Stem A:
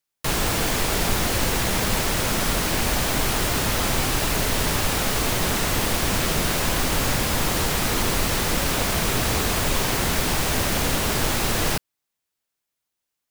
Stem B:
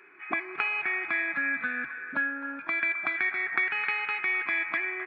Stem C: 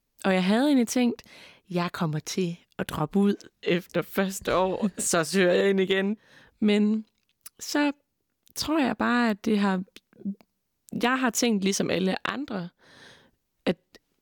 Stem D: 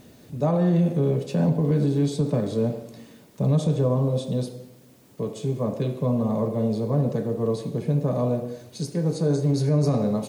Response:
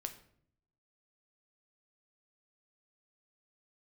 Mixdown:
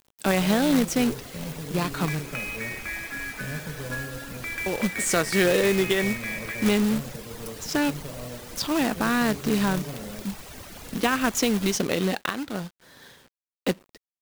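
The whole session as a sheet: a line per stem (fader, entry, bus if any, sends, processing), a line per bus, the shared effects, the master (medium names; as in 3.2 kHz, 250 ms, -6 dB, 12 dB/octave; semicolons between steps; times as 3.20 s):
-16.5 dB, 0.00 s, no send, reverb removal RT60 1.6 s
-2.0 dB, 1.75 s, no send, peaking EQ 770 Hz -11 dB 1.9 oct
-0.5 dB, 0.00 s, muted 2.20–4.66 s, send -20 dB, none
-16.5 dB, 0.00 s, send -11.5 dB, none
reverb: on, RT60 0.60 s, pre-delay 7 ms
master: companded quantiser 4-bit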